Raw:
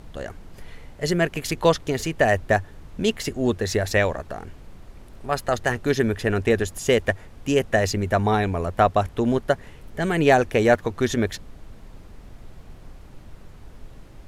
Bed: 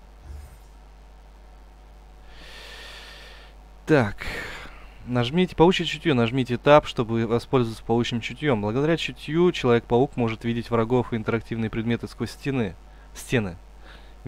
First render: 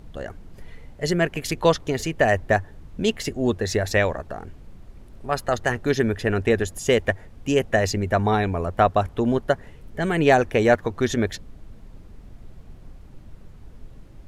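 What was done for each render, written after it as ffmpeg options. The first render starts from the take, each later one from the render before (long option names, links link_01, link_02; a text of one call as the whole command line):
ffmpeg -i in.wav -af "afftdn=noise_reduction=6:noise_floor=-45" out.wav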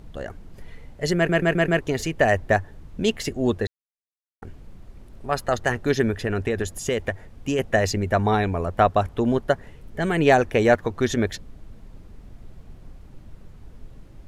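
ffmpeg -i in.wav -filter_complex "[0:a]asettb=1/sr,asplit=3[link_01][link_02][link_03];[link_01]atrim=end=6.104[link_04];[link_02]atrim=start=6.1:end=7.59,asetpts=PTS-STARTPTS,afade=type=in:duration=0.004:curve=qsin,afade=type=out:start_time=1.486:duration=0.004:curve=qsin,acompressor=threshold=-19dB:ratio=6:attack=3.2:release=140:knee=1:detection=peak[link_05];[link_03]atrim=start=7.586[link_06];[link_04][link_05]acrossfade=duration=0.004:curve1=hsin:curve2=qsin[link_07];[link_07][link_06]acrossfade=duration=0.004:curve1=qsin:curve2=hsin,asplit=8[link_08][link_09][link_10][link_11][link_12][link_13][link_14][link_15];[link_08]atrim=end=1.292[link_16];[link_09]atrim=start=1.158:end=1.292[link_17];[link_10]atrim=start=1.158:end=1.292[link_18];[link_11]atrim=start=1.158:end=1.292[link_19];[link_12]atrim=start=1.158:end=1.292[link_20];[link_13]atrim=start=1.808:end=3.67,asetpts=PTS-STARTPTS,afade=type=out:start_time=1.858:duration=0.004:curve=hsin[link_21];[link_14]atrim=start=3.67:end=4.42,asetpts=PTS-STARTPTS,volume=0[link_22];[link_15]atrim=start=4.42,asetpts=PTS-STARTPTS,afade=type=in:duration=0.004:curve=hsin[link_23];[link_16][link_17]acrossfade=duration=0.004:curve1=hsin:curve2=hsin[link_24];[link_24][link_18]acrossfade=duration=0.004:curve1=hsin:curve2=hsin[link_25];[link_25][link_19]acrossfade=duration=0.004:curve1=hsin:curve2=hsin[link_26];[link_26][link_20]acrossfade=duration=0.004:curve1=hsin:curve2=hsin[link_27];[link_21][link_22][link_23]concat=n=3:v=0:a=1[link_28];[link_27][link_28]acrossfade=duration=0.004:curve1=hsin:curve2=hsin" out.wav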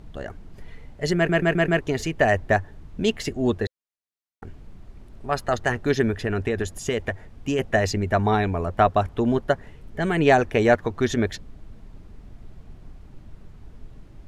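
ffmpeg -i in.wav -af "highshelf=frequency=9600:gain=-8,bandreject=frequency=520:width=12" out.wav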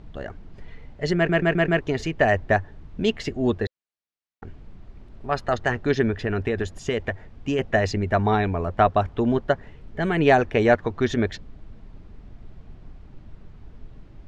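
ffmpeg -i in.wav -af "lowpass=4900" out.wav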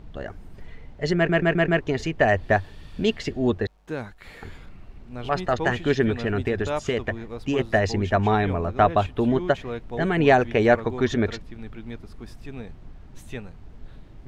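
ffmpeg -i in.wav -i bed.wav -filter_complex "[1:a]volume=-13dB[link_01];[0:a][link_01]amix=inputs=2:normalize=0" out.wav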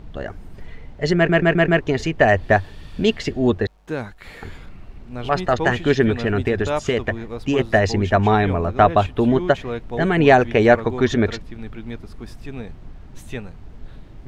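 ffmpeg -i in.wav -af "volume=4.5dB,alimiter=limit=-1dB:level=0:latency=1" out.wav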